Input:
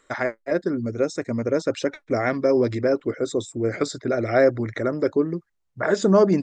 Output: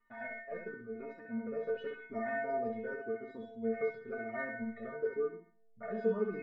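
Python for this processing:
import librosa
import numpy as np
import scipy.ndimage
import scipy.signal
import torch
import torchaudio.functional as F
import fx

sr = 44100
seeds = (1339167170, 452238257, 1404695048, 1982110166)

p1 = scipy.signal.sosfilt(scipy.signal.butter(4, 2400.0, 'lowpass', fs=sr, output='sos'), x)
p2 = fx.low_shelf(p1, sr, hz=500.0, db=3.0)
p3 = fx.level_steps(p2, sr, step_db=21)
p4 = p2 + F.gain(torch.from_numpy(p3), -2.0).numpy()
p5 = fx.stiff_resonator(p4, sr, f0_hz=220.0, decay_s=0.8, stiffness=0.008)
p6 = p5 + fx.echo_feedback(p5, sr, ms=66, feedback_pct=30, wet_db=-5, dry=0)
p7 = fx.comb_cascade(p6, sr, direction='falling', hz=0.92)
y = F.gain(torch.from_numpy(p7), 4.5).numpy()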